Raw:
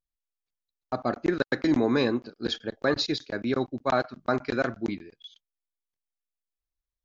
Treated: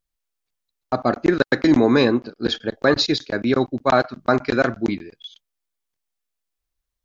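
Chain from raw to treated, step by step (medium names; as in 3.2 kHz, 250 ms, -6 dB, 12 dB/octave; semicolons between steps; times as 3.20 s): 2.05–2.63 s: treble shelf 5.2 kHz -6 dB; trim +8 dB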